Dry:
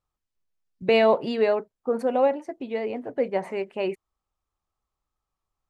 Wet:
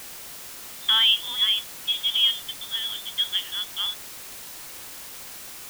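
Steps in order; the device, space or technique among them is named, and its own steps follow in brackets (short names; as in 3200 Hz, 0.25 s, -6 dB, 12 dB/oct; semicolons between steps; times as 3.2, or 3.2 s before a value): scrambled radio voice (BPF 330–2700 Hz; inverted band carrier 3800 Hz; white noise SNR 12 dB)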